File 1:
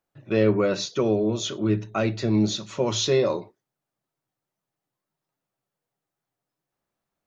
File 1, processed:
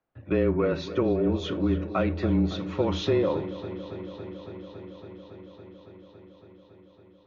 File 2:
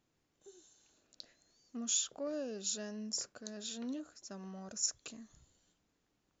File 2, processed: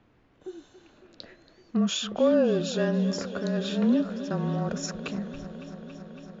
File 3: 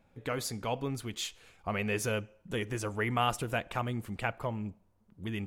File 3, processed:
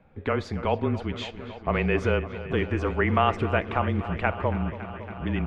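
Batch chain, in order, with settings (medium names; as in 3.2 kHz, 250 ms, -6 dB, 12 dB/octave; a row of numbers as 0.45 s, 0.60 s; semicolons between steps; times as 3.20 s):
tone controls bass 0 dB, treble -15 dB; compression 2.5:1, threshold -24 dBFS; frequency shift -26 Hz; distance through air 120 m; on a send: feedback echo behind a low-pass 279 ms, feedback 83%, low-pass 4 kHz, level -14.5 dB; on the sum: normalise loudness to -27 LUFS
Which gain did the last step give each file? +2.5 dB, +18.5 dB, +9.0 dB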